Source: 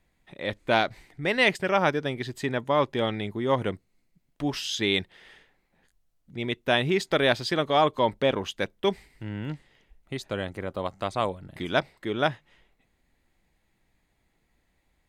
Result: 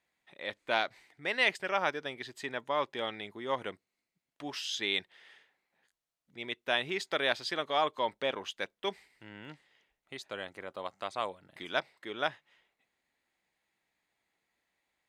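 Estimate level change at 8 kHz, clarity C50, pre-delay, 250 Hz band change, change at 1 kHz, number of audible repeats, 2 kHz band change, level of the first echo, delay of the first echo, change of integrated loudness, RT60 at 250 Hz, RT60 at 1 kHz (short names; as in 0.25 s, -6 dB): -6.0 dB, none, none, -14.5 dB, -7.0 dB, none, -5.0 dB, none, none, -7.0 dB, none, none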